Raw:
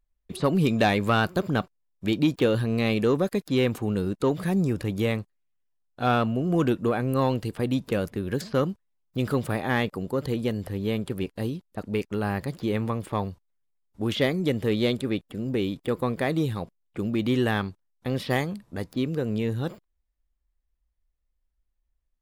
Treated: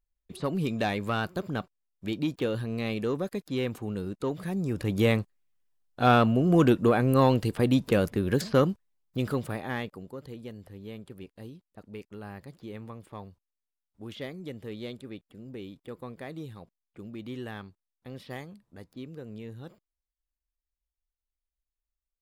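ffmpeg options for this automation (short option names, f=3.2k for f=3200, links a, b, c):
-af "volume=2.5dB,afade=t=in:st=4.62:d=0.45:silence=0.334965,afade=t=out:st=8.5:d=1:silence=0.375837,afade=t=out:st=9.5:d=0.7:silence=0.375837"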